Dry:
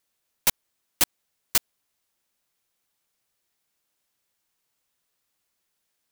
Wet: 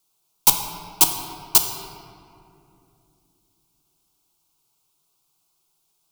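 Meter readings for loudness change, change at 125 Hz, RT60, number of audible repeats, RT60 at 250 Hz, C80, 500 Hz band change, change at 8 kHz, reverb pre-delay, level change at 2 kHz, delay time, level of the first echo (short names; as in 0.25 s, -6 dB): +6.5 dB, +8.0 dB, 2.7 s, none, 4.1 s, 7.0 dB, +5.0 dB, +7.5 dB, 6 ms, -1.0 dB, none, none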